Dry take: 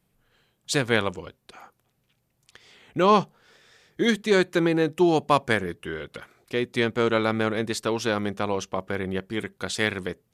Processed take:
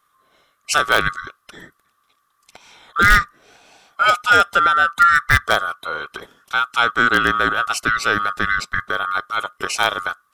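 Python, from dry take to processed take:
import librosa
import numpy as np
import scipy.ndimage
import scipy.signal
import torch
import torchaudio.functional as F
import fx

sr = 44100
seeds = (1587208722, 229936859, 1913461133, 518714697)

p1 = fx.band_swap(x, sr, width_hz=1000)
p2 = (np.mod(10.0 ** (9.5 / 20.0) * p1 + 1.0, 2.0) - 1.0) / 10.0 ** (9.5 / 20.0)
p3 = p1 + (p2 * 10.0 ** (-9.5 / 20.0))
y = p3 * 10.0 ** (4.0 / 20.0)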